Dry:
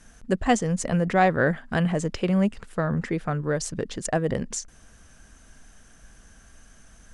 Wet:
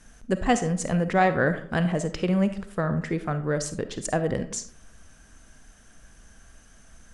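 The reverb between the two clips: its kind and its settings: algorithmic reverb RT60 0.57 s, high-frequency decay 0.45×, pre-delay 10 ms, DRR 10 dB; trim -1 dB

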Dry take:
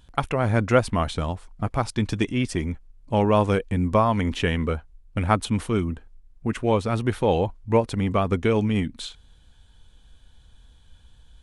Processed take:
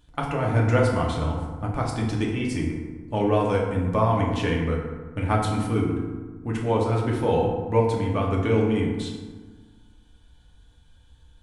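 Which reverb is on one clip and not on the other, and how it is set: FDN reverb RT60 1.4 s, low-frequency decay 1.25×, high-frequency decay 0.5×, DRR -2.5 dB; trim -6 dB

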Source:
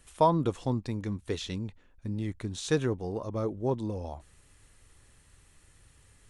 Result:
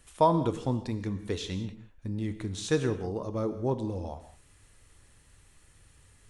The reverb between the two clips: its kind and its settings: gated-style reverb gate 220 ms flat, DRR 10 dB

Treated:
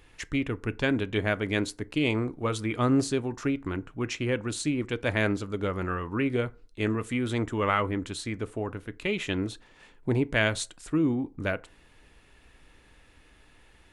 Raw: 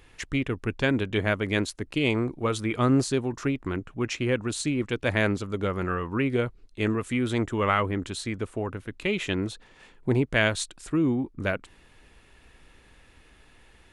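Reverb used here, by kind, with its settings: FDN reverb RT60 0.36 s, low-frequency decay 0.85×, high-frequency decay 0.55×, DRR 14.5 dB; trim -2 dB

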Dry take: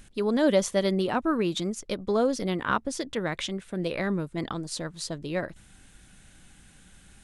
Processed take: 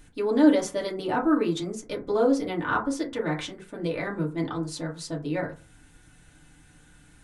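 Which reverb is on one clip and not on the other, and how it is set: FDN reverb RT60 0.33 s, low-frequency decay 1×, high-frequency decay 0.35×, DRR -3.5 dB; trim -5 dB

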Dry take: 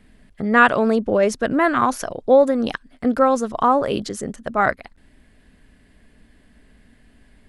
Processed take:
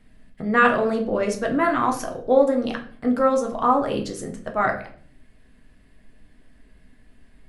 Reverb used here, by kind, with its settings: simulated room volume 53 m³, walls mixed, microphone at 0.52 m; trim -5.5 dB

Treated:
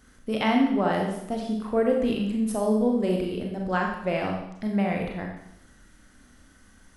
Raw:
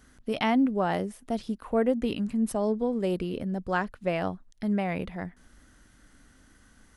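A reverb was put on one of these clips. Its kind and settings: Schroeder reverb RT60 0.78 s, combs from 29 ms, DRR 0.5 dB

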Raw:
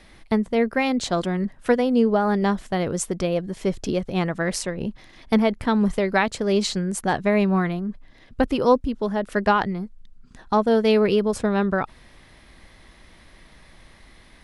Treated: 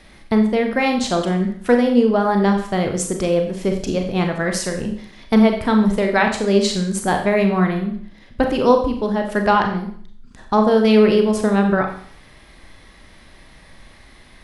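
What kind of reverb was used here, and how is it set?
Schroeder reverb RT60 0.55 s, combs from 29 ms, DRR 3.5 dB; trim +2.5 dB

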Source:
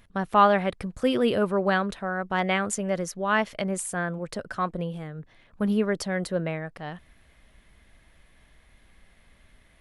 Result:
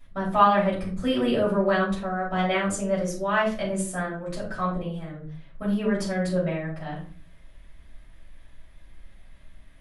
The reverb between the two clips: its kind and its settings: simulated room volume 270 m³, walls furnished, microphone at 6.4 m; trim -10.5 dB

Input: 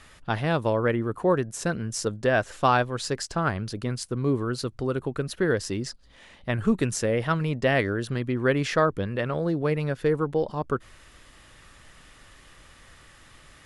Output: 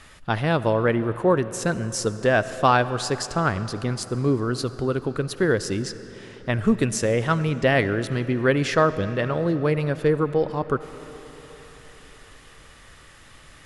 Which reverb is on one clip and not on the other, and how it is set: algorithmic reverb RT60 4.5 s, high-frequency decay 0.75×, pre-delay 30 ms, DRR 13.5 dB; trim +3 dB

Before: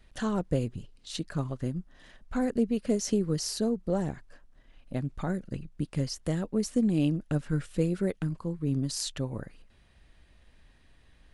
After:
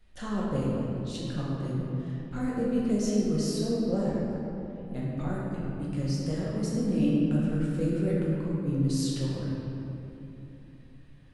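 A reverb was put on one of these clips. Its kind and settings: simulated room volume 150 m³, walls hard, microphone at 0.93 m; trim -7.5 dB

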